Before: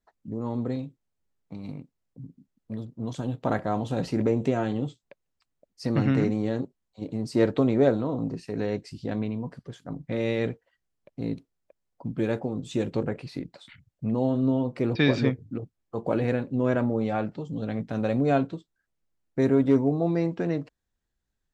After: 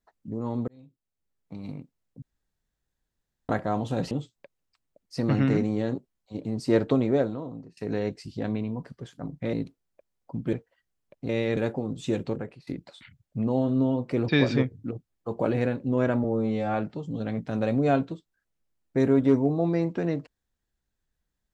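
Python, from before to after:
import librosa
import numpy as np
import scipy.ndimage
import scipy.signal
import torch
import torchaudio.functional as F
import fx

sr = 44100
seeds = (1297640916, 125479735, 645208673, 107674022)

y = fx.edit(x, sr, fx.fade_in_span(start_s=0.68, length_s=0.93),
    fx.room_tone_fill(start_s=2.22, length_s=1.27),
    fx.cut(start_s=4.11, length_s=0.67),
    fx.fade_out_to(start_s=7.57, length_s=0.87, floor_db=-22.0),
    fx.swap(start_s=10.2, length_s=0.28, other_s=11.24, other_length_s=1.0),
    fx.fade_out_to(start_s=12.83, length_s=0.51, floor_db=-17.5),
    fx.stretch_span(start_s=16.91, length_s=0.25, factor=2.0), tone=tone)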